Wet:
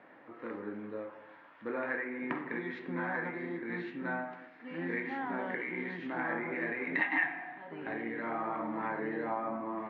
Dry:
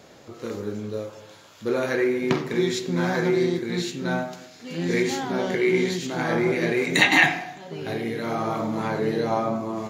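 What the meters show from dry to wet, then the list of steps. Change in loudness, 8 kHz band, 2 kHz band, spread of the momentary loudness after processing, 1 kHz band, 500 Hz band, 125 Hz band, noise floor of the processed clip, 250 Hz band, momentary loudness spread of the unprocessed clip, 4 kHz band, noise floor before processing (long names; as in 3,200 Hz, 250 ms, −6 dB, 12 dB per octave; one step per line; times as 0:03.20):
−12.5 dB, below −40 dB, −9.5 dB, 11 LU, −8.5 dB, −15.0 dB, −18.0 dB, −57 dBFS, −12.5 dB, 14 LU, −27.0 dB, −49 dBFS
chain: loudspeaker in its box 280–2,200 Hz, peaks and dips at 290 Hz +5 dB, 430 Hz −6 dB, 620 Hz −3 dB, 970 Hz +4 dB, 1,800 Hz +7 dB
downward compressor 2.5 to 1, threshold −27 dBFS, peak gain reduction 13 dB
notch filter 370 Hz, Q 12
level −5.5 dB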